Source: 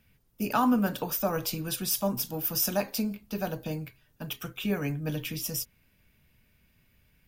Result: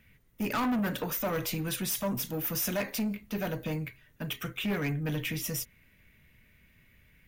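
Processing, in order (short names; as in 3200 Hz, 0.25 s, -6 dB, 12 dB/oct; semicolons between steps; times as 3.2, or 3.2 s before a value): thirty-one-band EQ 800 Hz -5 dB, 2000 Hz +10 dB, 5000 Hz -7 dB, 8000 Hz -3 dB, 12500 Hz -7 dB; soft clip -29 dBFS, distortion -8 dB; gain +3 dB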